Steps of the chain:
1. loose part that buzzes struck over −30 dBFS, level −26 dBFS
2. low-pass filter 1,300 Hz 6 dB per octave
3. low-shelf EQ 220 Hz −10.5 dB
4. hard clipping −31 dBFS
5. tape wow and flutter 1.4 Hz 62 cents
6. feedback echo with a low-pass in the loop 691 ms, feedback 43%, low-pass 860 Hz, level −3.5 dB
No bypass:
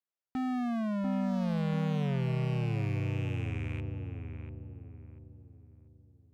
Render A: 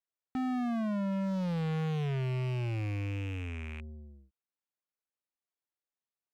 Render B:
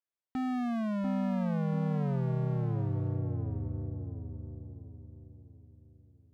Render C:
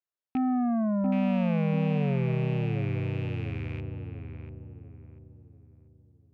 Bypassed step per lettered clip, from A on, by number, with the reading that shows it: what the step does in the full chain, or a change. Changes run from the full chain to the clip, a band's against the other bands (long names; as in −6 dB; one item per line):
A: 6, echo-to-direct ratio −8.0 dB to none audible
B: 1, 2 kHz band −5.5 dB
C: 4, distortion level −8 dB